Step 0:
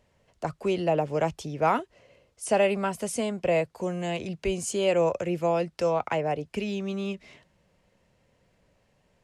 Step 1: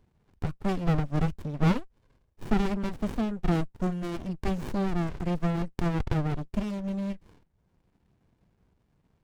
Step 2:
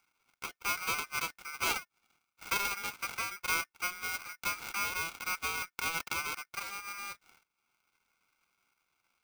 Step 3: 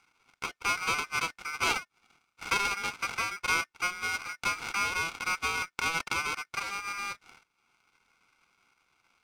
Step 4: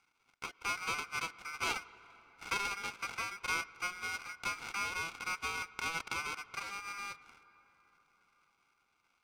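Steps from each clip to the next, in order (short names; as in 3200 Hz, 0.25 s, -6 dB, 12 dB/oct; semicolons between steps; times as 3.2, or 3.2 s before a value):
reverb removal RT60 0.77 s; spectral repair 4.66–5.16, 620–3900 Hz; running maximum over 65 samples; gain +3 dB
inverse Chebyshev high-pass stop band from 160 Hz, stop band 40 dB; notch 1200 Hz, Q 7.7; polarity switched at an audio rate 1800 Hz
in parallel at -1 dB: compressor, threshold -44 dBFS, peak gain reduction 16 dB; on the sum: air absorption 53 m; notch 600 Hz, Q 12; gain +3.5 dB
reverb RT60 5.1 s, pre-delay 88 ms, DRR 18 dB; gain -7 dB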